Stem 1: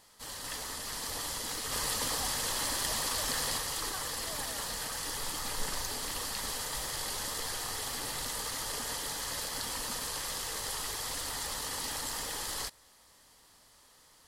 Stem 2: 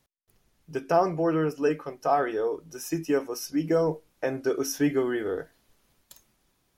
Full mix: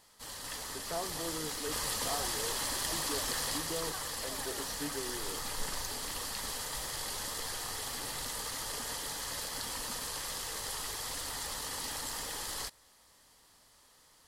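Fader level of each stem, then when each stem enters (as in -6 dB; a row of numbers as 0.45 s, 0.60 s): -2.0 dB, -16.5 dB; 0.00 s, 0.00 s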